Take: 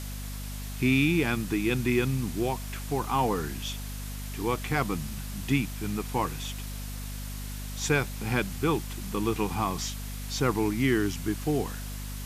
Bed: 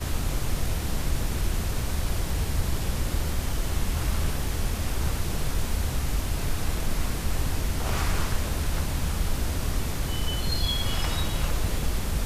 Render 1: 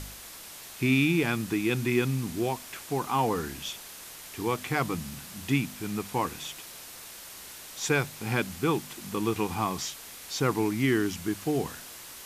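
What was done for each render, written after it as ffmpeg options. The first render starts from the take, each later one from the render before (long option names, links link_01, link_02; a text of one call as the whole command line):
ffmpeg -i in.wav -af "bandreject=frequency=50:width_type=h:width=4,bandreject=frequency=100:width_type=h:width=4,bandreject=frequency=150:width_type=h:width=4,bandreject=frequency=200:width_type=h:width=4,bandreject=frequency=250:width_type=h:width=4" out.wav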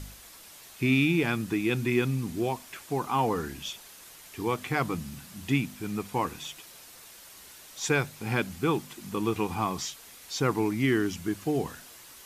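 ffmpeg -i in.wav -af "afftdn=noise_reduction=6:noise_floor=-45" out.wav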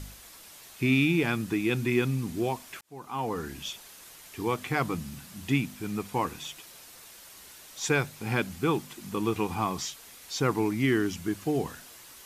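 ffmpeg -i in.wav -filter_complex "[0:a]asplit=2[link_01][link_02];[link_01]atrim=end=2.81,asetpts=PTS-STARTPTS,afade=type=out:start_time=2.806:duration=0.004:curve=hsin[link_03];[link_02]atrim=start=2.81,asetpts=PTS-STARTPTS,afade=type=in:duration=0.79[link_04];[link_03][link_04]concat=n=2:v=0:a=1" out.wav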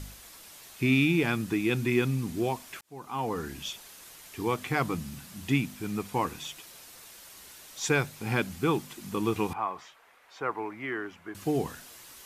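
ffmpeg -i in.wav -filter_complex "[0:a]asettb=1/sr,asplit=3[link_01][link_02][link_03];[link_01]atrim=end=9.534[link_04];[link_02]atrim=start=9.53:end=11.35,asetpts=PTS-STARTPTS,afade=type=in:duration=0.004:curve=qsin,afade=type=out:start_time=1.816:duration=0.004:curve=qsin,acrossover=split=480 2200:gain=0.112 1 0.0708[link_05][link_06][link_07];[link_05][link_06][link_07]amix=inputs=3:normalize=0[link_08];[link_03]atrim=start=11.346[link_09];[link_04][link_08]acrossfade=duration=0.004:curve1=hsin:curve2=qsin[link_10];[link_10][link_09]acrossfade=duration=0.004:curve1=qsin:curve2=hsin" out.wav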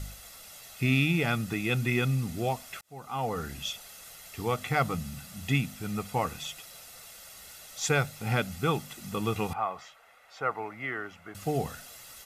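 ffmpeg -i in.wav -af "aecho=1:1:1.5:0.58" out.wav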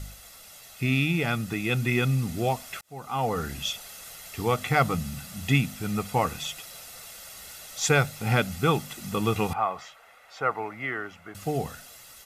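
ffmpeg -i in.wav -af "dynaudnorm=framelen=770:gausssize=5:maxgain=4.5dB" out.wav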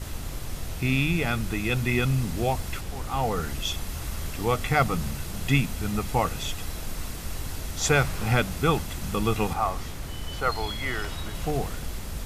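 ffmpeg -i in.wav -i bed.wav -filter_complex "[1:a]volume=-7dB[link_01];[0:a][link_01]amix=inputs=2:normalize=0" out.wav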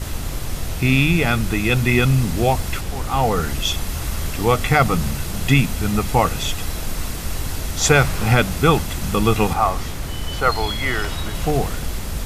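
ffmpeg -i in.wav -af "volume=8dB,alimiter=limit=-3dB:level=0:latency=1" out.wav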